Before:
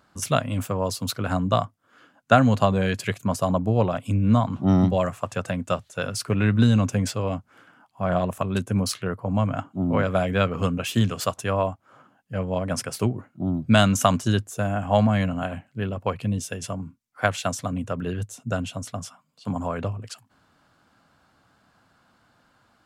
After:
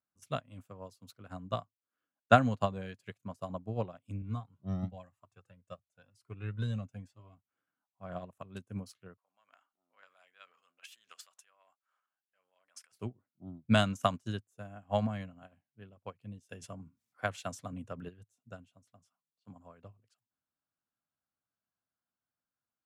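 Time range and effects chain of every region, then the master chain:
4.22–7.37 s: bass shelf 160 Hz +4 dB + Shepard-style flanger rising 1 Hz
9.17–12.92 s: transient shaper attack -4 dB, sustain +12 dB + high-pass 1.3 kHz
16.49–18.09 s: high-pass 54 Hz + level flattener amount 50%
whole clip: band-stop 890 Hz, Q 25; upward expansion 2.5:1, over -33 dBFS; trim -3.5 dB

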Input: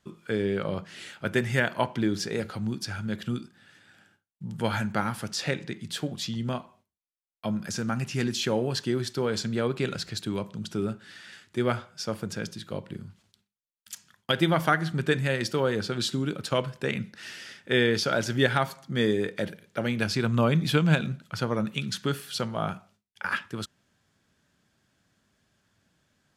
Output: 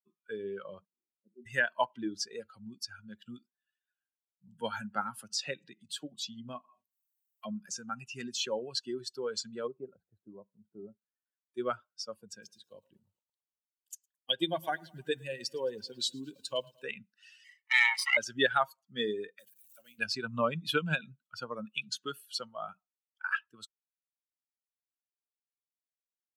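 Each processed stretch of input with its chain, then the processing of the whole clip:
0.85–1.46 s: Butterworth band-pass 270 Hz, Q 1.1 + slow attack 103 ms
4.47–7.70 s: high-pass 100 Hz 24 dB/octave + bass shelf 380 Hz +3 dB + upward compressor, threshold -29 dBFS
9.67–11.46 s: partial rectifier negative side -3 dB + Chebyshev low-pass 740 Hz
12.16–16.84 s: dynamic bell 1.4 kHz, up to -6 dB, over -39 dBFS, Q 0.82 + Butterworth band-stop 1.3 kHz, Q 5.2 + bit-crushed delay 110 ms, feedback 80%, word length 7-bit, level -13 dB
17.44–18.17 s: comb filter that takes the minimum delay 0.99 ms + high-pass 810 Hz 24 dB/octave + peaking EQ 2.2 kHz +13.5 dB 0.34 oct
19.39–19.99 s: jump at every zero crossing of -34.5 dBFS + pre-emphasis filter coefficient 0.8
whole clip: expander on every frequency bin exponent 2; frequency weighting A; trim +1.5 dB

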